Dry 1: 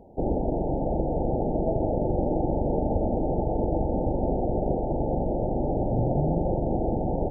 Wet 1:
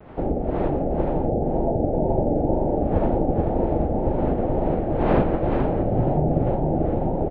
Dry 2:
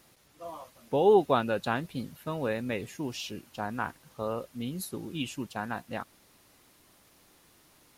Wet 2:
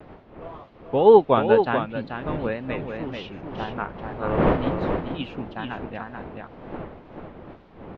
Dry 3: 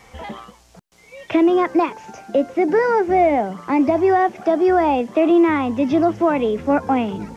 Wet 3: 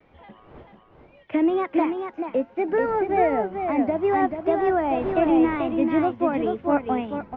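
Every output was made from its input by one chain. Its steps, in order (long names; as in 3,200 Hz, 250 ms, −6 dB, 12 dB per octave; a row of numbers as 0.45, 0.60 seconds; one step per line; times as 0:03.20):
wind on the microphone 560 Hz −37 dBFS
low-pass filter 3,300 Hz 24 dB per octave
pitch vibrato 2 Hz 94 cents
on a send: single-tap delay 436 ms −4.5 dB
on the sum: expander for the loud parts 1.5 to 1, over −33 dBFS
loudness normalisation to −23 LKFS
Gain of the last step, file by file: +4.5, +8.5, −4.5 decibels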